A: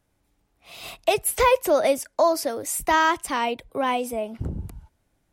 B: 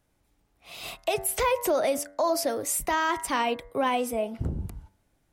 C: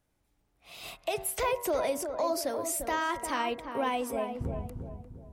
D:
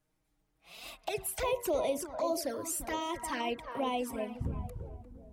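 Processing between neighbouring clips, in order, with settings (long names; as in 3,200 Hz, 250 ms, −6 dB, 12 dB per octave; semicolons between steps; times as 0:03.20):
hum removal 96.17 Hz, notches 22; brickwall limiter −17 dBFS, peak gain reduction 8 dB
feedback echo with a low-pass in the loop 349 ms, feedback 43%, low-pass 1,100 Hz, level −6 dB; level −5 dB
flanger swept by the level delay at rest 6.5 ms, full sweep at −26 dBFS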